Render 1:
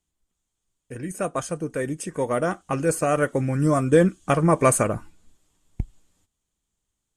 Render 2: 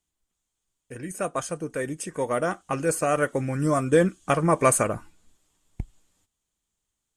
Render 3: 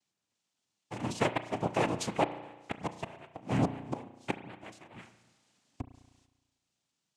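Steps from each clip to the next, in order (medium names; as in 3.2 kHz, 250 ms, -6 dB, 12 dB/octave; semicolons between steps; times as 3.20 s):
bass shelf 410 Hz -5 dB
inverted gate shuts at -16 dBFS, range -30 dB; noise-vocoded speech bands 4; spring tank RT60 1.2 s, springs 34 ms, chirp 50 ms, DRR 11 dB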